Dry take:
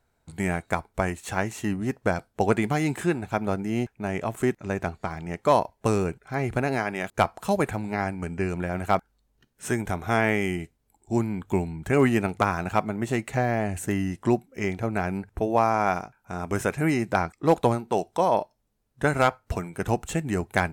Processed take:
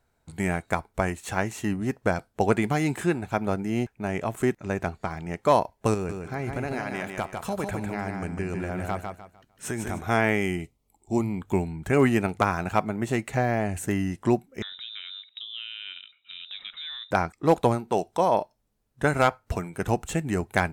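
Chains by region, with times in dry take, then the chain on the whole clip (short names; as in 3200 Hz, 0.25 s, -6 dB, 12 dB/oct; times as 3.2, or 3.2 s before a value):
5.94–10.01 compressor 3:1, threshold -27 dBFS + feedback echo 0.151 s, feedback 29%, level -5 dB
10.61–11.42 Butterworth band-stop 1600 Hz, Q 2.8 + notches 60/120 Hz
14.62–17.11 compressor 2.5:1, threshold -42 dBFS + inverted band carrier 3800 Hz
whole clip: dry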